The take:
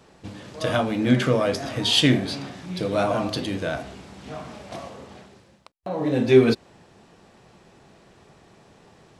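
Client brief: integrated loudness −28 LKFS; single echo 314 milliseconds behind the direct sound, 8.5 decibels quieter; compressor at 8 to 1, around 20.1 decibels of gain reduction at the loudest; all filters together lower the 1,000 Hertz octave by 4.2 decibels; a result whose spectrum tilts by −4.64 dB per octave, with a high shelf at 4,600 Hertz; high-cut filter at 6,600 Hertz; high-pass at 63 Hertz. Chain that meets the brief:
high-pass filter 63 Hz
low-pass filter 6,600 Hz
parametric band 1,000 Hz −6 dB
high-shelf EQ 4,600 Hz −7.5 dB
downward compressor 8 to 1, threshold −31 dBFS
single-tap delay 314 ms −8.5 dB
level +8 dB

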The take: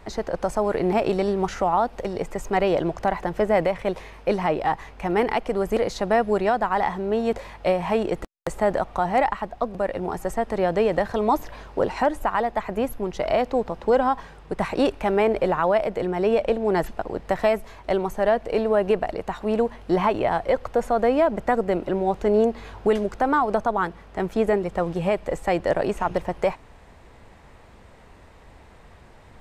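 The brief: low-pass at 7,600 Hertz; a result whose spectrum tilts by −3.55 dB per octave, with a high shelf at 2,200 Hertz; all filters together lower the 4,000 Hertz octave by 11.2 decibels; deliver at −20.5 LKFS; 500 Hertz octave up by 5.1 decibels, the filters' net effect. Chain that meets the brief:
low-pass filter 7,600 Hz
parametric band 500 Hz +7 dB
high-shelf EQ 2,200 Hz −8.5 dB
parametric band 4,000 Hz −8 dB
level −0.5 dB

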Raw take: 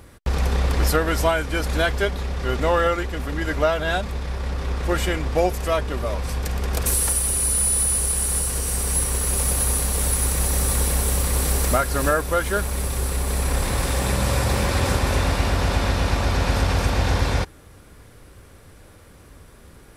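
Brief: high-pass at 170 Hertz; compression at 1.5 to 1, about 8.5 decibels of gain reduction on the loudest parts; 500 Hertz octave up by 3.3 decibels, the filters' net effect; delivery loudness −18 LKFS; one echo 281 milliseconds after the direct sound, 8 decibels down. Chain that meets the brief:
high-pass filter 170 Hz
parametric band 500 Hz +4 dB
downward compressor 1.5 to 1, threshold −37 dBFS
single-tap delay 281 ms −8 dB
level +10 dB

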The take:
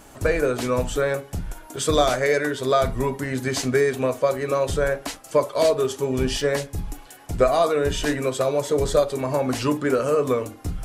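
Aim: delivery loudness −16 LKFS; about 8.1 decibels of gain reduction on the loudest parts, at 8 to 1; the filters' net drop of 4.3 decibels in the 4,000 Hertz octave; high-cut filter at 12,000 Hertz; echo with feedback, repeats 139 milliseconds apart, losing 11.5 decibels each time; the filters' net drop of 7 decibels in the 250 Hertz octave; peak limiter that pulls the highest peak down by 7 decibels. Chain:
low-pass filter 12,000 Hz
parametric band 250 Hz −9 dB
parametric band 4,000 Hz −5.5 dB
downward compressor 8 to 1, threshold −23 dBFS
brickwall limiter −21 dBFS
repeating echo 139 ms, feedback 27%, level −11.5 dB
level +14.5 dB

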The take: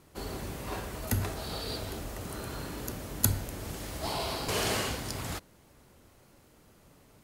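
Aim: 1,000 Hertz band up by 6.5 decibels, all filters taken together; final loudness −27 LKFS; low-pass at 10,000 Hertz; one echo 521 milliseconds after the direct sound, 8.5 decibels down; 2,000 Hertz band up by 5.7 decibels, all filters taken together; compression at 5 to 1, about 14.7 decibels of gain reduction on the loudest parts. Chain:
low-pass filter 10,000 Hz
parametric band 1,000 Hz +7 dB
parametric band 2,000 Hz +5 dB
downward compressor 5 to 1, threshold −42 dBFS
single-tap delay 521 ms −8.5 dB
level +17 dB

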